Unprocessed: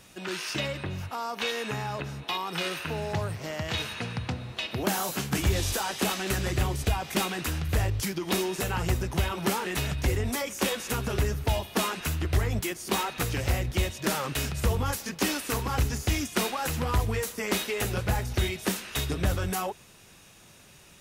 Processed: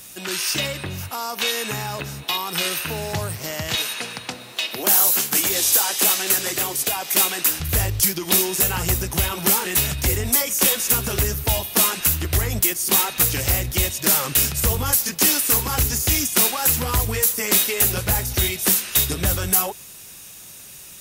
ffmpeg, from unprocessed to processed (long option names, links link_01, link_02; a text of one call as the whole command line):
ffmpeg -i in.wav -filter_complex "[0:a]asettb=1/sr,asplit=3[link_01][link_02][link_03];[link_01]atrim=end=3.754[link_04];[link_02]atrim=start=3.75:end=7.6,asetpts=PTS-STARTPTS,afade=type=in:duration=0.004:curve=qsin,afade=type=out:start_time=3.846:duration=0.004:curve=qsin,highpass=290[link_05];[link_03]atrim=start=7.596[link_06];[link_04][link_05]acrossfade=duration=0.004:curve1=hsin:curve2=qsin[link_07];[link_07][link_06]acrossfade=duration=0.004:curve1=qsin:curve2=hsin,aemphasis=mode=production:type=75fm,acontrast=70,volume=-2.5dB" out.wav